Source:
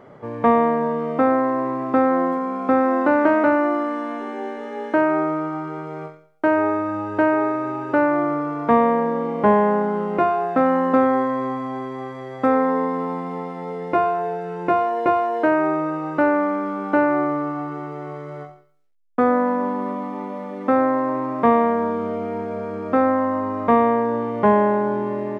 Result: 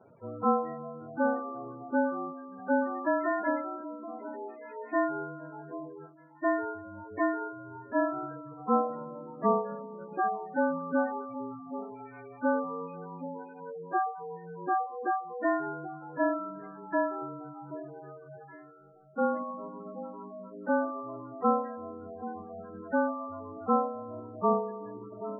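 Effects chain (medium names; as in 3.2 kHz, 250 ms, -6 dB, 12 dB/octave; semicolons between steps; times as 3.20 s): frequency axis rescaled in octaves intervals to 108%; reverb removal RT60 1.8 s; 16.59–17.22 s: peaking EQ 81 Hz -13 dB 2.1 oct; echo whose repeats swap between lows and highs 777 ms, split 960 Hz, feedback 52%, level -12 dB; spectral gate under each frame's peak -15 dB strong; trim -8 dB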